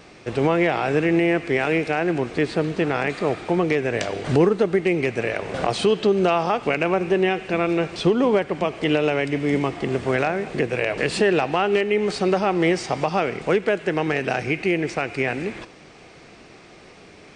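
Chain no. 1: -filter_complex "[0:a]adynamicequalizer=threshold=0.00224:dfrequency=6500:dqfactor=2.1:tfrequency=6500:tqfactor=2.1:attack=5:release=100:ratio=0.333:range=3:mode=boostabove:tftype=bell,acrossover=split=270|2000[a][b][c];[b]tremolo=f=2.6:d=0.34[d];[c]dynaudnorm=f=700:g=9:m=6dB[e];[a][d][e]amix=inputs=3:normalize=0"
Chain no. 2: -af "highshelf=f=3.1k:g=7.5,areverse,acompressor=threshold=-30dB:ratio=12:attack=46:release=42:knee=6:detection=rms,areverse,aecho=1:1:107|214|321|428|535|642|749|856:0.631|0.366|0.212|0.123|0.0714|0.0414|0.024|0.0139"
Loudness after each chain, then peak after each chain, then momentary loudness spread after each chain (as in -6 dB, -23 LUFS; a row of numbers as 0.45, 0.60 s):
-22.0, -27.5 LUFS; -4.5, -11.5 dBFS; 5, 4 LU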